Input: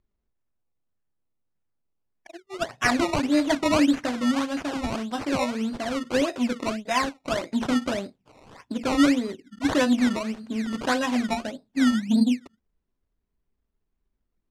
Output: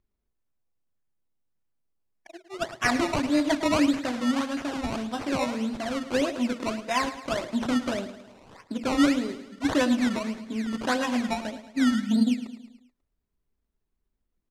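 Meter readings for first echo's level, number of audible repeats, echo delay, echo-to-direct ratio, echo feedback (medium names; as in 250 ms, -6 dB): -13.0 dB, 4, 108 ms, -11.5 dB, 52%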